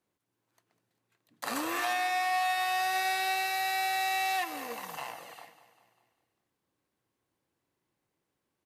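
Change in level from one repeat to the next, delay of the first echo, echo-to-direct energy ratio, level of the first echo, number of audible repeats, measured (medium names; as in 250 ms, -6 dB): -5.5 dB, 198 ms, -13.0 dB, -14.5 dB, 4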